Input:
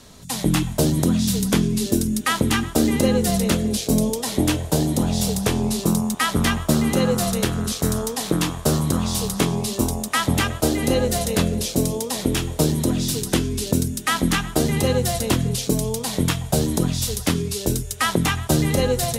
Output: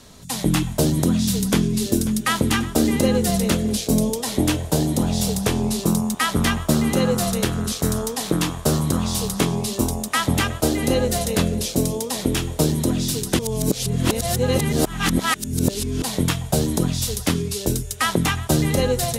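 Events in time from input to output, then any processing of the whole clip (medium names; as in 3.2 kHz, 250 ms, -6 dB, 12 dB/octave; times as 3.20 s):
1.19–1.84 s: echo throw 540 ms, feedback 70%, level -15 dB
13.39–16.02 s: reverse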